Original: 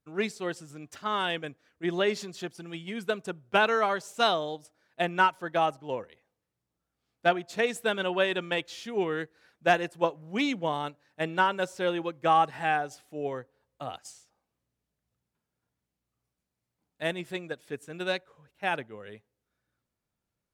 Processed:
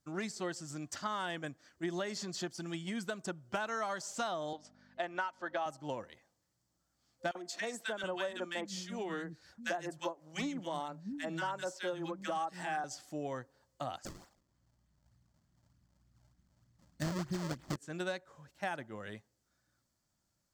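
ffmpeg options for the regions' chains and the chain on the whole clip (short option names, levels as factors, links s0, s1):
-filter_complex "[0:a]asettb=1/sr,asplit=3[s0][s1][s2];[s0]atrim=end=4.534[s3];[s1]atrim=start=4.53:end=5.66,asetpts=PTS-STARTPTS,afade=t=in:d=0.004:c=qsin,afade=t=out:st=1.126:d=0.004:c=qsin,aeval=exprs='val(0)+0.00398*(sin(2*PI*50*n/s)+sin(2*PI*2*50*n/s)/2+sin(2*PI*3*50*n/s)/3+sin(2*PI*4*50*n/s)/4+sin(2*PI*5*50*n/s)/5)':c=same,highpass=370,lowpass=3800[s4];[s2]atrim=start=5.656[s5];[s3][s4]acrossfade=d=0.004:c1=hsin:c2=qsin[s6];[s6][s5]acrossfade=d=0.004:c1=qsin:c2=hsin,asettb=1/sr,asplit=3[s7][s8][s9];[s7]atrim=end=7.314[s10];[s8]atrim=start=7.31:end=12.84,asetpts=PTS-STARTPTS,afade=t=in:d=0.004:c=qsin,afade=t=out:st=5.526:d=0.004:c=qsin,tremolo=f=5.5:d=0.49,acrossover=split=200|1500[s11][s12][s13];[s12]adelay=40[s14];[s11]adelay=720[s15];[s15][s14][s13]amix=inputs=3:normalize=0,atrim=end_sample=243873[s16];[s9]atrim=start=12.836[s17];[s10][s16]acrossfade=d=0.004:c1=hsin:c2=qsin[s18];[s18][s17]acrossfade=d=0.004:c1=qsin:c2=hsin,asettb=1/sr,asplit=3[s19][s20][s21];[s19]atrim=end=14.054[s22];[s20]atrim=start=14.05:end=17.76,asetpts=PTS-STARTPTS,afade=t=in:d=0.004:c=qsin,afade=t=out:st=3.706:d=0.004:c=qsin,asubboost=boost=10.5:cutoff=230,acrusher=samples=34:mix=1:aa=0.000001:lfo=1:lforange=54.4:lforate=3.3[s23];[s21]atrim=start=17.756[s24];[s22][s23]acrossfade=d=0.004:c1=hsin:c2=qsin[s25];[s25][s24]acrossfade=d=0.004:c1=qsin:c2=hsin,acrossover=split=2600|5600[s26][s27][s28];[s26]acompressor=threshold=0.0355:ratio=4[s29];[s27]acompressor=threshold=0.00316:ratio=4[s30];[s28]acompressor=threshold=0.00178:ratio=4[s31];[s29][s30][s31]amix=inputs=3:normalize=0,superequalizer=7b=0.447:12b=0.631:14b=2.24:15b=2.51,acompressor=threshold=0.00794:ratio=2,volume=1.41"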